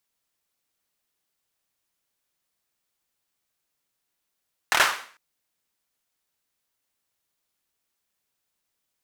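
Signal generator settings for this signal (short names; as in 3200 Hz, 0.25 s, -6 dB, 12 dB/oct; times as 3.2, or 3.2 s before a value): hand clap length 0.45 s, bursts 4, apart 26 ms, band 1400 Hz, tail 0.47 s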